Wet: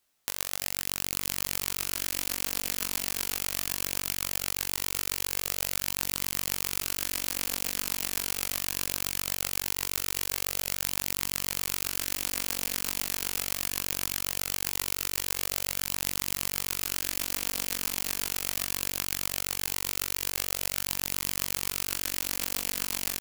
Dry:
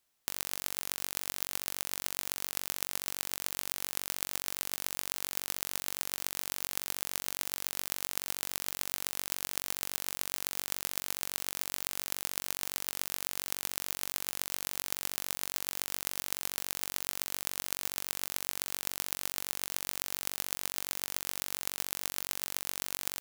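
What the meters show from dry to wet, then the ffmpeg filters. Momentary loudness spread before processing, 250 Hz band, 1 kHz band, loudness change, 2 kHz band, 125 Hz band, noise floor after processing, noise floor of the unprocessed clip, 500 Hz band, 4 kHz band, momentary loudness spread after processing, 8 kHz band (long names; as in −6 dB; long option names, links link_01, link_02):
1 LU, +8.5 dB, +3.5 dB, +5.0 dB, +5.5 dB, +9.5 dB, −36 dBFS, −77 dBFS, +5.0 dB, +5.5 dB, 0 LU, +5.5 dB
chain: -filter_complex "[0:a]flanger=delay=19:depth=6.5:speed=0.2,asplit=2[link_01][link_02];[link_02]aecho=0:1:340|595|786.2|929.7|1037:0.631|0.398|0.251|0.158|0.1[link_03];[link_01][link_03]amix=inputs=2:normalize=0,volume=6.5dB"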